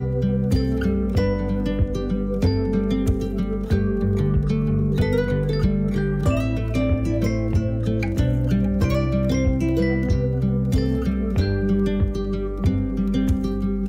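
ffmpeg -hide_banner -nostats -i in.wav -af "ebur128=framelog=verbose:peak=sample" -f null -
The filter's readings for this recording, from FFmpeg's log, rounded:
Integrated loudness:
  I:         -22.1 LUFS
  Threshold: -32.0 LUFS
Loudness range:
  LRA:         1.2 LU
  Threshold: -42.0 LUFS
  LRA low:   -22.6 LUFS
  LRA high:  -21.4 LUFS
Sample peak:
  Peak:      -11.0 dBFS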